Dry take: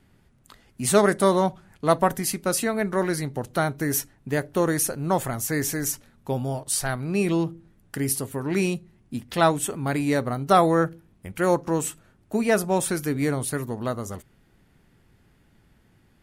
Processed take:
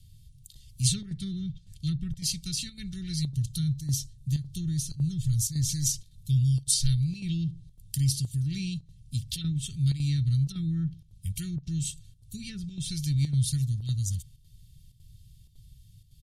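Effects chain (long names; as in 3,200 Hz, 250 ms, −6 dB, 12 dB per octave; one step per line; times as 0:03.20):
treble cut that deepens with the level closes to 1,300 Hz, closed at −15.5 dBFS
elliptic band-stop filter 140–3,500 Hz, stop band 70 dB
parametric band 2,100 Hz −5 dB 1.3 octaves, from 0:03.55 −13.5 dB, from 0:05.69 −6 dB
comb filter 2.2 ms, depth 51%
square-wave tremolo 1.8 Hz, depth 60%, duty 85%
level +8 dB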